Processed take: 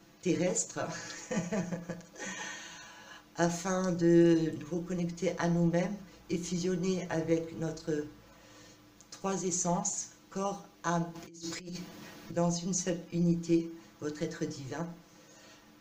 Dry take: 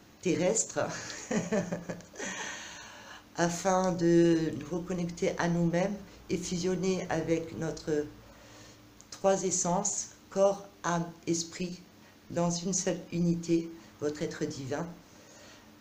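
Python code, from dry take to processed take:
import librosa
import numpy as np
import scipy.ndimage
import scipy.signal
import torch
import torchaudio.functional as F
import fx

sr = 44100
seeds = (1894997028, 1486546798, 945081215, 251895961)

y = fx.dmg_crackle(x, sr, seeds[0], per_s=14.0, level_db=-56.0)
y = fx.over_compress(y, sr, threshold_db=-45.0, ratio=-1.0, at=(11.14, 12.34), fade=0.02)
y = y + 0.82 * np.pad(y, (int(6.0 * sr / 1000.0), 0))[:len(y)]
y = F.gain(torch.from_numpy(y), -5.0).numpy()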